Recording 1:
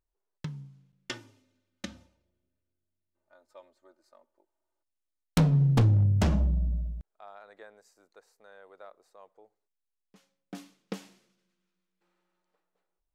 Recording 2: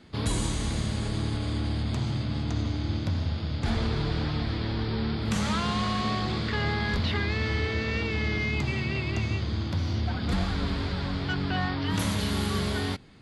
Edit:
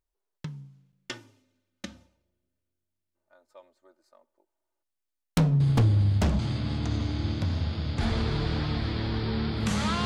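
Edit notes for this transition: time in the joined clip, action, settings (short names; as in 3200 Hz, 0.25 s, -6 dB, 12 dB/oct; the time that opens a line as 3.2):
recording 1
5.6 add recording 2 from 1.25 s 0.79 s -7 dB
6.39 switch to recording 2 from 2.04 s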